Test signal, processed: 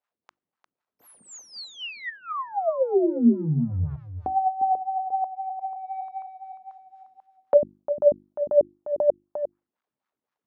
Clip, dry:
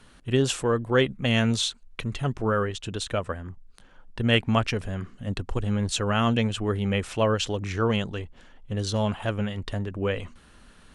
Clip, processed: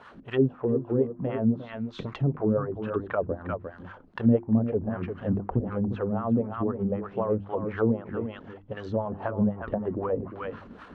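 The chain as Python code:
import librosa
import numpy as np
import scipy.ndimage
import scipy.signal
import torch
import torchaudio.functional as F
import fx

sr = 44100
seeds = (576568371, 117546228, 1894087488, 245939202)

y = fx.law_mismatch(x, sr, coded='mu')
y = scipy.signal.sosfilt(scipy.signal.butter(2, 7100.0, 'lowpass', fs=sr, output='sos'), y)
y = fx.dynamic_eq(y, sr, hz=290.0, q=0.71, threshold_db=-36.0, ratio=4.0, max_db=-4)
y = fx.rider(y, sr, range_db=4, speed_s=0.5)
y = fx.wah_lfo(y, sr, hz=3.9, low_hz=230.0, high_hz=1300.0, q=2.1)
y = y + 10.0 ** (-10.0 / 20.0) * np.pad(y, (int(352 * sr / 1000.0), 0))[:len(y)]
y = fx.env_lowpass_down(y, sr, base_hz=590.0, full_db=-32.0)
y = fx.peak_eq(y, sr, hz=64.0, db=6.5, octaves=3.0)
y = fx.hum_notches(y, sr, base_hz=50, count=7)
y = F.gain(torch.from_numpy(y), 8.0).numpy()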